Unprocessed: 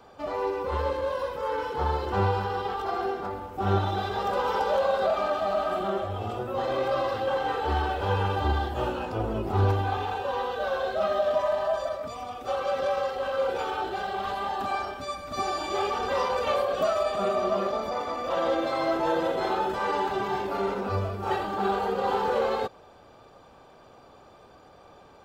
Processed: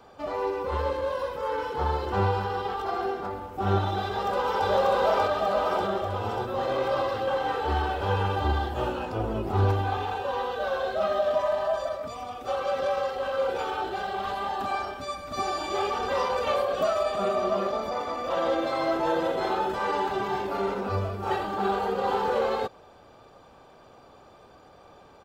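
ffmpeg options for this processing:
-filter_complex "[0:a]asplit=2[a][b];[b]afade=t=in:st=4.03:d=0.01,afade=t=out:st=4.68:d=0.01,aecho=0:1:590|1180|1770|2360|2950|3540|4130|4720|5310|5900|6490:1|0.65|0.4225|0.274625|0.178506|0.116029|0.0754189|0.0490223|0.0318645|0.0207119|0.0134627[c];[a][c]amix=inputs=2:normalize=0"

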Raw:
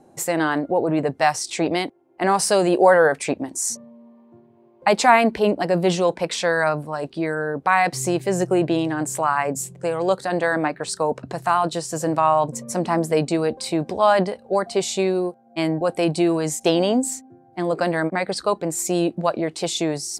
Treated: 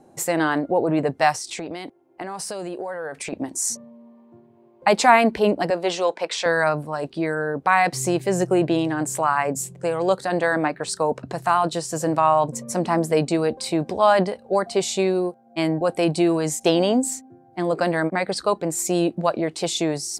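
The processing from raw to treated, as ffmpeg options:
-filter_complex "[0:a]asettb=1/sr,asplit=3[a][b][c];[a]atrim=end=1.334[d];[b]atrim=start=1.33:end=3.33,asetpts=PTS-STARTPTS,afade=t=in:d=0.004:c=qsin,afade=t=out:st=1.996:d=0.004:c=qsin,acompressor=threshold=-27dB:ratio=10:attack=3.2:release=140:knee=1:detection=peak[e];[c]atrim=start=3.326[f];[d][e]acrossfade=d=0.004:c1=hsin:c2=qsin[g];[g][f]acrossfade=d=0.004:c1=qsin:c2=hsin,asettb=1/sr,asplit=3[h][i][j];[h]atrim=end=5.704[k];[i]atrim=start=5.7:end=6.46,asetpts=PTS-STARTPTS,afade=t=in:d=0.004:c=qsin,afade=t=out:st=0.756:d=0.004:c=qsin,highpass=450,lowpass=7.6k[l];[j]atrim=start=6.456[m];[k][l]acrossfade=d=0.004:c1=hsin:c2=qsin[n];[n][m]acrossfade=d=0.004:c1=qsin:c2=hsin"

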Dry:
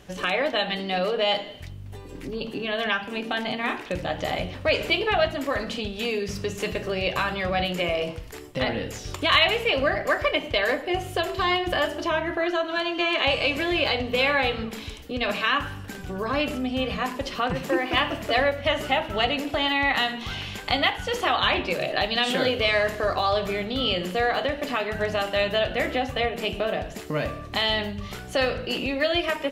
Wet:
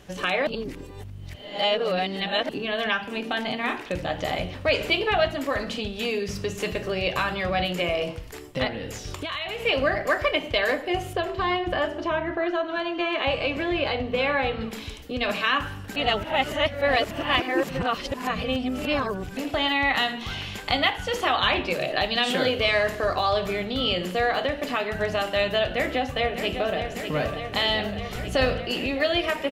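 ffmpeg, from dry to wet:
-filter_complex "[0:a]asettb=1/sr,asplit=3[a][b][c];[a]atrim=end=8.674[d];[b]atrim=start=8.67:end=9.65,asetpts=PTS-STARTPTS,afade=t=in:d=0.004:c=qsin,afade=t=out:st=0.976:d=0.004:c=qsin,acompressor=threshold=-28dB:ratio=6:attack=3.2:release=140:knee=1:detection=peak[e];[c]atrim=start=9.646[f];[d][e]acrossfade=d=0.004:c1=hsin:c2=qsin[g];[g][f]acrossfade=d=0.004:c1=qsin:c2=hsin,asettb=1/sr,asplit=3[h][i][j];[h]atrim=end=11.134[k];[i]atrim=start=11.13:end=14.61,asetpts=PTS-STARTPTS,afade=t=in:d=0.004:c=qsin,afade=t=out:st=3.476:d=0.004:c=qsin,lowpass=f=1.9k:p=1[l];[j]atrim=start=14.606[m];[k][l]acrossfade=d=0.004:c1=hsin:c2=qsin[n];[n][m]acrossfade=d=0.004:c1=qsin:c2=hsin,asplit=2[o][p];[p]afade=t=in:st=25.64:d=0.01,afade=t=out:st=26.79:d=0.01,aecho=0:1:600|1200|1800|2400|3000|3600|4200|4800|5400|6000|6600|7200:0.375837|0.30067|0.240536|0.192429|0.153943|0.123154|0.0985235|0.0788188|0.0630551|0.050444|0.0403552|0.0322842[q];[o][q]amix=inputs=2:normalize=0,asettb=1/sr,asplit=3[r][s][t];[r]atrim=end=28.154[u];[s]atrim=start=28.15:end=28.56,asetpts=PTS-STARTPTS,afade=t=in:d=0.004:c=qsin,afade=t=out:st=0.406:d=0.004:c=qsin,lowshelf=f=160:g=10[v];[t]atrim=start=28.556[w];[u][v]acrossfade=d=0.004:c1=hsin:c2=qsin[x];[x][w]acrossfade=d=0.004:c1=qsin:c2=hsin,asplit=5[y][z][aa][ab][ac];[y]atrim=end=0.472[ad];[z]atrim=start=0.468:end=2.492,asetpts=PTS-STARTPTS,areverse[ae];[aa]atrim=start=2.488:end=15.962[af];[ab]atrim=start=15.958:end=19.372,asetpts=PTS-STARTPTS,areverse[ag];[ac]atrim=start=19.368[ah];[ad][ae]acrossfade=d=0.004:c1=hsin:c2=hsin[ai];[ai][af]acrossfade=d=0.004:c1=hsin:c2=hsin[aj];[aj][ag]acrossfade=d=0.004:c1=hsin:c2=hsin[ak];[ak][ah]acrossfade=d=0.004:c1=hsin:c2=hsin"

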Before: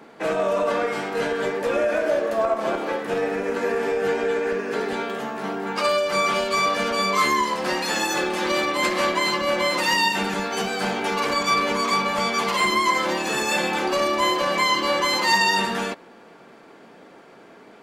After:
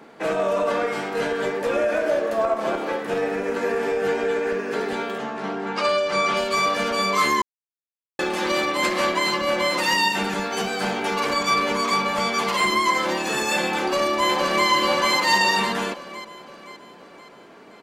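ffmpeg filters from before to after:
-filter_complex "[0:a]asettb=1/sr,asplit=3[a][b][c];[a]atrim=end=5.184[d];[b]atrim=start=5.18:end=6.37,asetpts=PTS-STARTPTS,afade=t=in:d=0.004:c=qsin,afade=t=out:st=1.186:d=0.004:c=qsin,lowpass=6.6k[e];[c]atrim=start=6.366[f];[d][e]acrossfade=d=0.004:c1=hsin:c2=qsin[g];[g][f]acrossfade=d=0.004:c1=qsin:c2=hsin,asplit=2[h][i];[i]afade=t=in:st=13.77:d=0.01,afade=t=out:st=14.68:d=0.01,aecho=0:1:520|1040|1560|2080|2600|3120|3640:0.668344|0.334172|0.167086|0.083543|0.0417715|0.0208857|0.0104429[j];[h][j]amix=inputs=2:normalize=0,asplit=3[k][l][m];[k]atrim=end=7.42,asetpts=PTS-STARTPTS,afade=t=out:st=7.416:d=0.004:c=hsin[n];[l]atrim=start=7.42:end=8.19,asetpts=PTS-STARTPTS,volume=0[o];[m]atrim=start=8.19,asetpts=PTS-STARTPTS,afade=t=in:d=0.004:c=hsin[p];[n][o][p]concat=n=3:v=0:a=1"

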